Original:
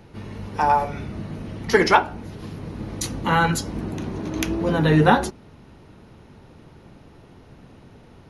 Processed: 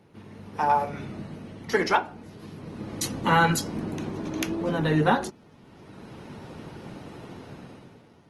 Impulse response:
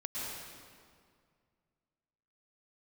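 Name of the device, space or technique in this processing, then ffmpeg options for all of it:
video call: -af "highpass=120,dynaudnorm=framelen=130:gausssize=11:maxgain=15dB,volume=-7.5dB" -ar 48000 -c:a libopus -b:a 20k

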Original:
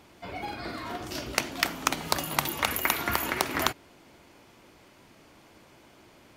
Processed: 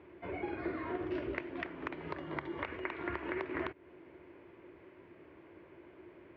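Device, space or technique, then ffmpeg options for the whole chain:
bass amplifier: -filter_complex "[0:a]asettb=1/sr,asplit=3[link_01][link_02][link_03];[link_01]atrim=end=2.194[link_04];[link_02]atrim=start=2.19:end=2.62,asetpts=PTS-STARTPTS,afade=type=in:duration=0.004:curve=qsin,afade=type=out:start_time=0.426:duration=0.004:curve=qsin,bandreject=frequency=2600:width=5.5[link_05];[link_03]atrim=start=2.616[link_06];[link_04][link_05]acrossfade=duration=0.004:curve1=hsin:curve2=qsin[link_07];[link_07][link_06]acrossfade=duration=0.004:curve1=qsin:curve2=hsin,acompressor=threshold=-32dB:ratio=4,highpass=72,equalizer=frequency=73:width_type=q:width=4:gain=3,equalizer=frequency=130:width_type=q:width=4:gain=-5,equalizer=frequency=220:width_type=q:width=4:gain=-9,equalizer=frequency=360:width_type=q:width=4:gain=10,equalizer=frequency=780:width_type=q:width=4:gain=-8,equalizer=frequency=1300:width_type=q:width=4:gain=-6,lowpass=frequency=2200:width=0.5412,lowpass=frequency=2200:width=1.3066,volume=-1dB"

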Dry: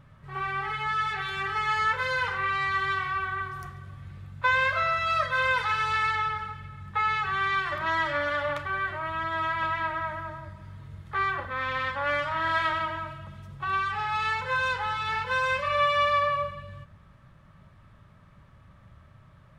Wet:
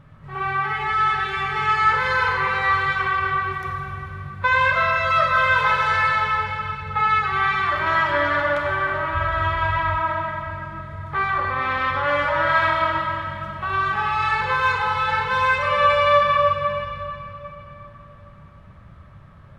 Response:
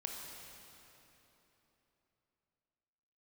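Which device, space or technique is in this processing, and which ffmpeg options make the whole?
swimming-pool hall: -filter_complex "[1:a]atrim=start_sample=2205[link_01];[0:a][link_01]afir=irnorm=-1:irlink=0,highshelf=frequency=3700:gain=-7,asplit=3[link_02][link_03][link_04];[link_02]afade=type=out:start_time=9.13:duration=0.02[link_05];[link_03]asubboost=boost=8:cutoff=73,afade=type=in:start_time=9.13:duration=0.02,afade=type=out:start_time=9.97:duration=0.02[link_06];[link_04]afade=type=in:start_time=9.97:duration=0.02[link_07];[link_05][link_06][link_07]amix=inputs=3:normalize=0,volume=8.5dB"

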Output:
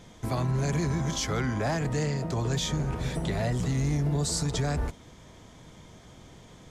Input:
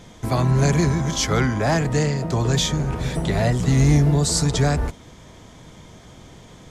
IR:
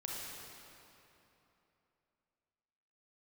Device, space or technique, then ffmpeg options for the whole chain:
limiter into clipper: -af "alimiter=limit=-13.5dB:level=0:latency=1:release=54,asoftclip=type=hard:threshold=-14.5dB,volume=-6dB"

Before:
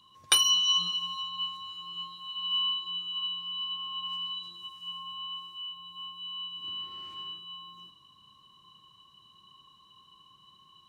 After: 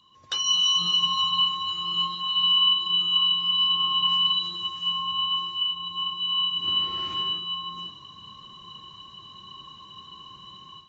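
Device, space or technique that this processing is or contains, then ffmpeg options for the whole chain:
low-bitrate web radio: -af "dynaudnorm=framelen=250:gausssize=3:maxgain=13dB,alimiter=limit=-15dB:level=0:latency=1:release=460" -ar 48000 -c:a aac -b:a 24k

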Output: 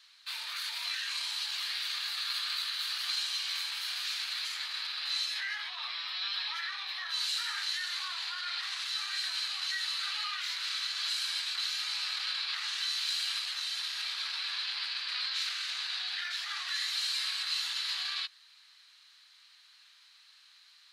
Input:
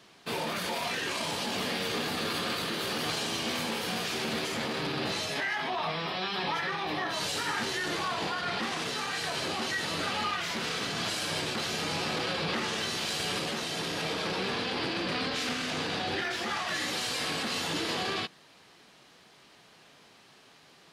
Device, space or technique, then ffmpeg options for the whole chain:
headphones lying on a table: -af "highpass=frequency=1300:width=0.5412,highpass=frequency=1300:width=1.3066,equalizer=frequency=4100:width_type=o:width=0.35:gain=11,volume=-4.5dB"

